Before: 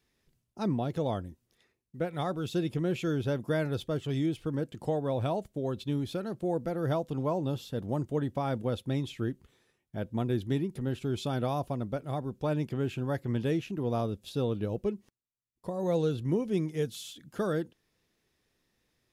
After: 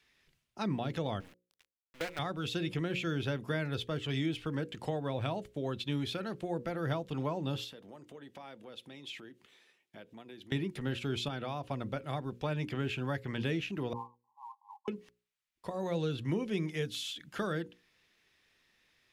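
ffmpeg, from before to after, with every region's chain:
-filter_complex "[0:a]asettb=1/sr,asplit=3[a][b][c];[a]atrim=end=1.204[d];[b]atrim=start=1.2:end=2.19,asetpts=PTS-STARTPTS,afade=t=in:d=0.004:c=qsin,afade=t=out:st=0.986:d=0.004:c=qsin,highpass=300,acrusher=bits=7:dc=4:mix=0:aa=0.000001[e];[c]atrim=start=2.186[f];[d][e]acrossfade=d=0.004:c1=hsin:c2=qsin[g];[g][f]acrossfade=d=0.004:c1=qsin:c2=hsin,asettb=1/sr,asplit=3[h][i][j];[h]atrim=end=7.644[k];[i]atrim=start=7.64:end=10.52,asetpts=PTS-STARTPTS,afade=t=in:d=0.004:c=qsin,afade=t=out:st=2.876:d=0.004:c=qsin,highpass=230,acompressor=threshold=-47dB:ratio=4:attack=3.2:release=140:knee=1:detection=peak,equalizer=f=1.4k:t=o:w=1.1:g=-4[l];[j]atrim=start=10.516[m];[k][l]acrossfade=d=0.004:c1=hsin:c2=qsin[n];[n][m]acrossfade=d=0.004:c1=qsin:c2=hsin,asettb=1/sr,asplit=3[o][p][q];[o]atrim=end=11.284[r];[p]atrim=start=11.28:end=11.71,asetpts=PTS-STARTPTS,afade=t=in:d=0.004:c=qsin,afade=t=out:st=0.426:d=0.004:c=qsin,highshelf=f=8.4k:g=-10,acompressor=threshold=-35dB:ratio=2:attack=3.2:release=140:knee=1:detection=peak,highpass=49[s];[q]atrim=start=11.706[t];[r][s]acrossfade=d=0.004:c1=hsin:c2=qsin[u];[u][t]acrossfade=d=0.004:c1=qsin:c2=hsin,asettb=1/sr,asplit=3[v][w][x];[v]atrim=end=13.934[y];[w]atrim=start=13.93:end=14.88,asetpts=PTS-STARTPTS,afade=t=in:d=0.004:c=qsin,afade=t=out:st=0.946:d=0.004:c=qsin,asuperpass=centerf=940:order=20:qfactor=3.1,acrusher=bits=9:mode=log:mix=0:aa=0.000001[z];[x]atrim=start=14.876[aa];[y][z]acrossfade=d=0.004:c1=hsin:c2=qsin[ab];[ab][aa]acrossfade=d=0.004:c1=qsin:c2=hsin,equalizer=f=2.4k:t=o:w=2.5:g=13.5,acrossover=split=290[ac][ad];[ad]acompressor=threshold=-33dB:ratio=3[ae];[ac][ae]amix=inputs=2:normalize=0,bandreject=f=60:t=h:w=6,bandreject=f=120:t=h:w=6,bandreject=f=180:t=h:w=6,bandreject=f=240:t=h:w=6,bandreject=f=300:t=h:w=6,bandreject=f=360:t=h:w=6,bandreject=f=420:t=h:w=6,bandreject=f=480:t=h:w=6,bandreject=f=540:t=h:w=6,volume=-3dB"

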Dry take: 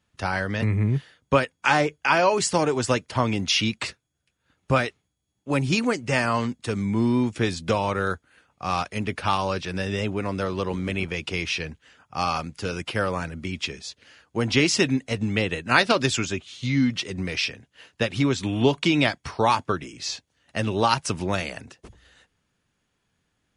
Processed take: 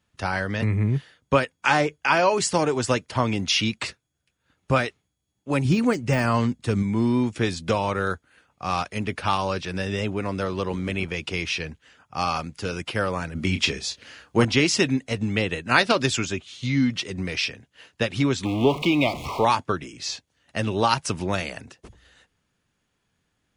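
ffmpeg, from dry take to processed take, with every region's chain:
-filter_complex "[0:a]asettb=1/sr,asplit=3[a][b][c];[a]atrim=end=5.654[d];[b]atrim=start=5.65:end=6.83,asetpts=PTS-STARTPTS,afade=t=in:d=0.004:c=qsin,afade=t=out:st=1.176:d=0.004:c=qsin,deesser=0.75,lowshelf=f=240:g=7.5[e];[c]atrim=start=6.826[f];[d][e]acrossfade=d=0.004:c1=hsin:c2=qsin[g];[g][f]acrossfade=d=0.004:c1=qsin:c2=hsin,asettb=1/sr,asplit=3[h][i][j];[h]atrim=end=13.354[k];[i]atrim=start=13.35:end=14.45,asetpts=PTS-STARTPTS,afade=t=in:d=0.004:c=qsin,afade=t=out:st=1.096:d=0.004:c=qsin,acontrast=71,asplit=2[l][m];[m]adelay=31,volume=-9dB[n];[l][n]amix=inputs=2:normalize=0,atrim=end_sample=48510[o];[j]atrim=start=14.446[p];[k][o]acrossfade=d=0.004:c1=hsin:c2=qsin[q];[q][p]acrossfade=d=0.004:c1=qsin:c2=hsin,asettb=1/sr,asplit=3[r][s][t];[r]atrim=end=18.454[u];[s]atrim=start=18.45:end=19.45,asetpts=PTS-STARTPTS,afade=t=in:d=0.004:c=qsin,afade=t=out:st=0.996:d=0.004:c=qsin,aeval=exprs='val(0)+0.5*0.0562*sgn(val(0))':c=same,asuperstop=centerf=1600:order=12:qfactor=1.9,bass=f=250:g=-4,treble=f=4k:g=-13[v];[t]atrim=start=19.446[w];[u][v]acrossfade=d=0.004:c1=hsin:c2=qsin[x];[x][w]acrossfade=d=0.004:c1=qsin:c2=hsin"

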